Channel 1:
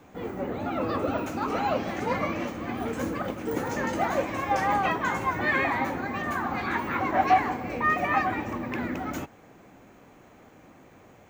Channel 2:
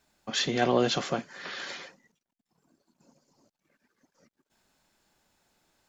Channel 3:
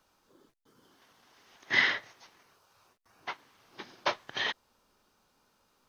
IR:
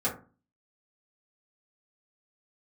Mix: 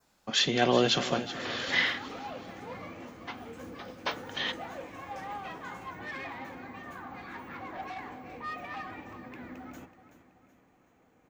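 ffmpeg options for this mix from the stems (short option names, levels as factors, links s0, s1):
-filter_complex "[0:a]asoftclip=type=tanh:threshold=0.0944,adelay=600,volume=0.178,asplit=3[s0][s1][s2];[s1]volume=0.15[s3];[s2]volume=0.251[s4];[1:a]volume=1,asplit=2[s5][s6];[s6]volume=0.2[s7];[2:a]volume=0.531,asplit=2[s8][s9];[s9]volume=0.211[s10];[3:a]atrim=start_sample=2205[s11];[s3][s10]amix=inputs=2:normalize=0[s12];[s12][s11]afir=irnorm=-1:irlink=0[s13];[s4][s7]amix=inputs=2:normalize=0,aecho=0:1:377|754|1131|1508|1885|2262:1|0.46|0.212|0.0973|0.0448|0.0206[s14];[s0][s5][s8][s13][s14]amix=inputs=5:normalize=0,adynamicequalizer=threshold=0.00282:dfrequency=3100:dqfactor=1.7:tfrequency=3100:tqfactor=1.7:attack=5:release=100:ratio=0.375:range=2.5:mode=boostabove:tftype=bell"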